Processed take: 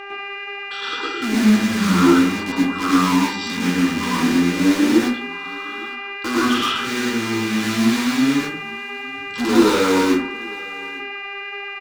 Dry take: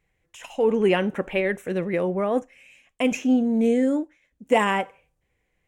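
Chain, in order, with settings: wide varispeed 0.481×; in parallel at -8.5 dB: wrapped overs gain 24.5 dB; on the sum: fixed phaser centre 300 Hz, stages 4; buzz 400 Hz, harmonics 7, -42 dBFS -3 dB/oct; dynamic EQ 5400 Hz, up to +4 dB, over -50 dBFS, Q 0.74; flange 1.9 Hz, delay 0.3 ms, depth 1.4 ms, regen -76%; overdrive pedal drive 27 dB, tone 5900 Hz, clips at -8 dBFS; on a send: echo 0.858 s -23.5 dB; on the sum: plate-style reverb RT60 0.54 s, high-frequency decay 0.45×, pre-delay 95 ms, DRR -6 dB; gain -6 dB

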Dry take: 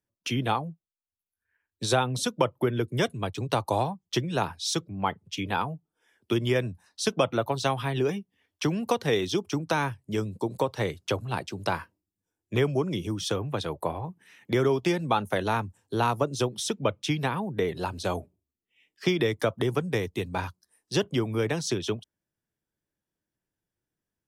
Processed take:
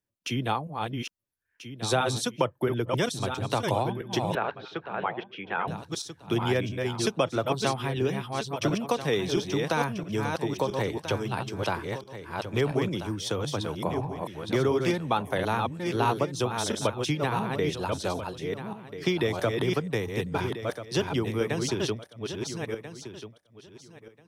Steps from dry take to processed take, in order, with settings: regenerating reverse delay 0.669 s, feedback 40%, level -4 dB; 4.35–5.68 speaker cabinet 260–2600 Hz, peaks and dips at 280 Hz -9 dB, 950 Hz -4 dB, 1500 Hz +4 dB; gain -1.5 dB

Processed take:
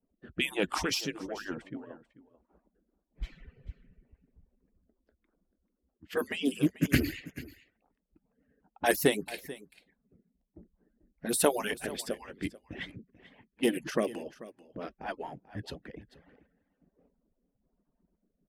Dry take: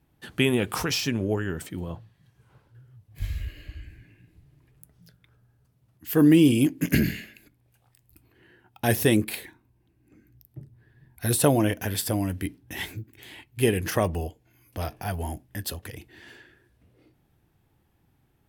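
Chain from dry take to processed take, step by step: median-filter separation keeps percussive; low-pass opened by the level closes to 750 Hz, open at -24 dBFS; rotary speaker horn 1.1 Hz; on a send: echo 0.439 s -17.5 dB; on the sum: Doppler distortion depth 0.14 ms

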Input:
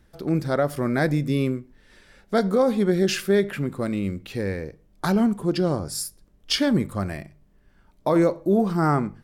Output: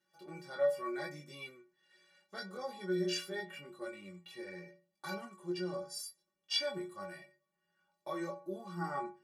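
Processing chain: weighting filter A; chorus voices 2, 0.78 Hz, delay 21 ms, depth 1.1 ms; metallic resonator 170 Hz, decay 0.46 s, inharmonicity 0.03; gain +4.5 dB

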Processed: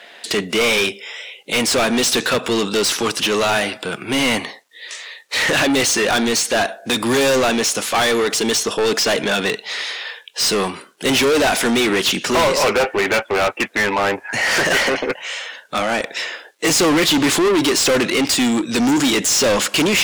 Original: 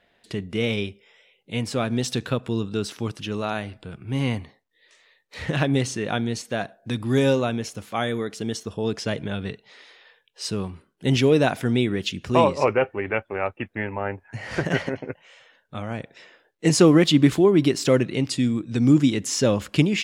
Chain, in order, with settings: HPF 200 Hz 12 dB/oct; bell 8200 Hz +7 dB 1.8 oct; overdrive pedal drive 35 dB, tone 7900 Hz, clips at -3 dBFS; gain -5.5 dB

